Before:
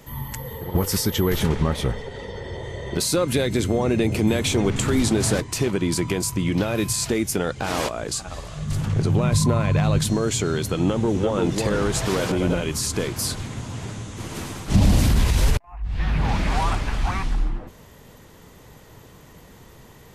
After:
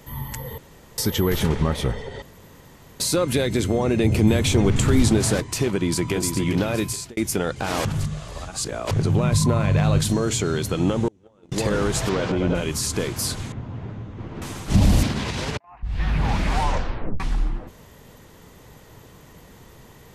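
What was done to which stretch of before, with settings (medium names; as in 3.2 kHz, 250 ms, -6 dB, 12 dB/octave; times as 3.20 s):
0.58–0.98 s: room tone
2.22–3.00 s: room tone
4.03–5.19 s: bass shelf 130 Hz +9 dB
5.70–6.14 s: echo throw 410 ms, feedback 45%, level -6.5 dB
6.77–7.17 s: fade out
7.85–8.91 s: reverse
9.53–10.36 s: doubling 41 ms -12 dB
11.08–11.52 s: gate -16 dBFS, range -35 dB
12.09–12.55 s: distance through air 130 m
13.52–14.42 s: tape spacing loss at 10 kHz 42 dB
15.03–15.83 s: band-pass 150–5600 Hz
16.59 s: tape stop 0.61 s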